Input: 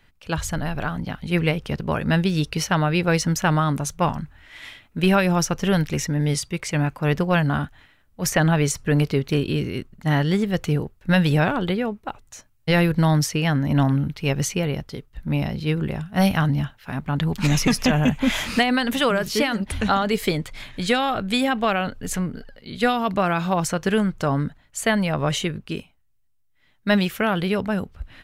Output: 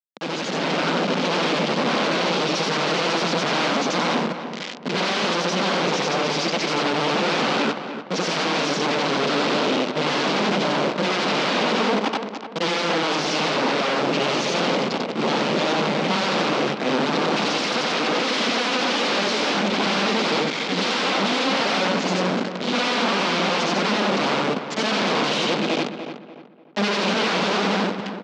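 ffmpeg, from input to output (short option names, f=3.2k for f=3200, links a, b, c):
-filter_complex "[0:a]afftfilt=real='re':imag='-im':win_size=8192:overlap=0.75,equalizer=f=260:t=o:w=0.27:g=4,asplit=2[a][b];[b]alimiter=limit=-18.5dB:level=0:latency=1:release=41,volume=-2dB[c];[a][c]amix=inputs=2:normalize=0,aeval=exprs='(tanh(7.94*val(0)+0.55)-tanh(0.55))/7.94':c=same,aresample=16000,acrusher=bits=5:mix=0:aa=0.000001,aresample=44100,aeval=exprs='0.0299*(abs(mod(val(0)/0.0299+3,4)-2)-1)':c=same,dynaudnorm=f=430:g=3:m=6dB,highpass=f=200:w=0.5412,highpass=f=200:w=1.3066,equalizer=f=210:t=q:w=4:g=4,equalizer=f=500:t=q:w=4:g=3,equalizer=f=1.8k:t=q:w=4:g=-4,lowpass=f=5k:w=0.5412,lowpass=f=5k:w=1.3066,asplit=2[d][e];[e]adelay=294,lowpass=f=2.3k:p=1,volume=-9dB,asplit=2[f][g];[g]adelay=294,lowpass=f=2.3k:p=1,volume=0.36,asplit=2[h][i];[i]adelay=294,lowpass=f=2.3k:p=1,volume=0.36,asplit=2[j][k];[k]adelay=294,lowpass=f=2.3k:p=1,volume=0.36[l];[d][f][h][j][l]amix=inputs=5:normalize=0,volume=8dB"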